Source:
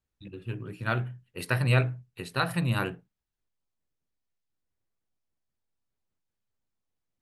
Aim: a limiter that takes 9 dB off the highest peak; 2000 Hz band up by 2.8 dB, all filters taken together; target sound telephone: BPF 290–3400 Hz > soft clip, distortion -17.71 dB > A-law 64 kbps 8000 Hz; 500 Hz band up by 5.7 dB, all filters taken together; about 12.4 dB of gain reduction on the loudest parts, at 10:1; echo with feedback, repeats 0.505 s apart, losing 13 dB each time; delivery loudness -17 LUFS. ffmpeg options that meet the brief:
-af "equalizer=f=500:t=o:g=7.5,equalizer=f=2k:t=o:g=4,acompressor=threshold=-28dB:ratio=10,alimiter=limit=-23.5dB:level=0:latency=1,highpass=290,lowpass=3.4k,aecho=1:1:505|1010|1515:0.224|0.0493|0.0108,asoftclip=threshold=-28.5dB,volume=25.5dB" -ar 8000 -c:a pcm_alaw

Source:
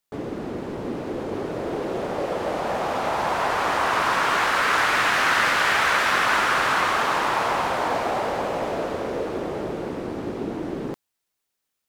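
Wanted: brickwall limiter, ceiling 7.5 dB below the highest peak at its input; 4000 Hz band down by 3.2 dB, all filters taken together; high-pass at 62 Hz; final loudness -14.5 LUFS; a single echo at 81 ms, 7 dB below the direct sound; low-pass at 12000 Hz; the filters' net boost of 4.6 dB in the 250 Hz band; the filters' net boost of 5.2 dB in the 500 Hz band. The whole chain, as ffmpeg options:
-af "highpass=62,lowpass=12k,equalizer=f=250:t=o:g=4,equalizer=f=500:t=o:g=5.5,equalizer=f=4k:t=o:g=-4.5,alimiter=limit=-13.5dB:level=0:latency=1,aecho=1:1:81:0.447,volume=8dB"

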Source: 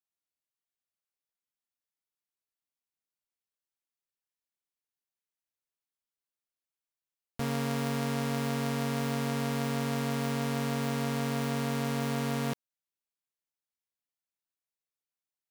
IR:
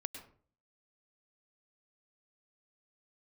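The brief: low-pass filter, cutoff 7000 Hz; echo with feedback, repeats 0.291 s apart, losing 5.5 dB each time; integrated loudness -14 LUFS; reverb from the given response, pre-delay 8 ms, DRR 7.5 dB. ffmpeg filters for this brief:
-filter_complex "[0:a]lowpass=7k,aecho=1:1:291|582|873|1164|1455|1746|2037:0.531|0.281|0.149|0.079|0.0419|0.0222|0.0118,asplit=2[a][b];[1:a]atrim=start_sample=2205,adelay=8[c];[b][c]afir=irnorm=-1:irlink=0,volume=-6dB[d];[a][d]amix=inputs=2:normalize=0,volume=16.5dB"

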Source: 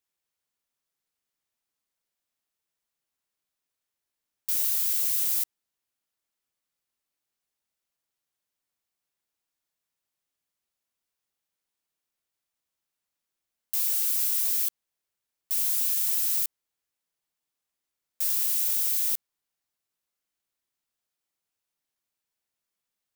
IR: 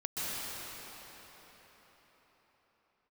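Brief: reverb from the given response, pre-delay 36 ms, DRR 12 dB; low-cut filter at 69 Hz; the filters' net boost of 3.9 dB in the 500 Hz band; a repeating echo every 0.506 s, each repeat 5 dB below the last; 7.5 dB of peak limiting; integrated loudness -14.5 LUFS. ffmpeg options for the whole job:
-filter_complex "[0:a]highpass=69,equalizer=f=500:t=o:g=5,alimiter=limit=-20dB:level=0:latency=1,aecho=1:1:506|1012|1518|2024|2530|3036|3542:0.562|0.315|0.176|0.0988|0.0553|0.031|0.0173,asplit=2[a][b];[1:a]atrim=start_sample=2205,adelay=36[c];[b][c]afir=irnorm=-1:irlink=0,volume=-18.5dB[d];[a][d]amix=inputs=2:normalize=0,volume=14.5dB"

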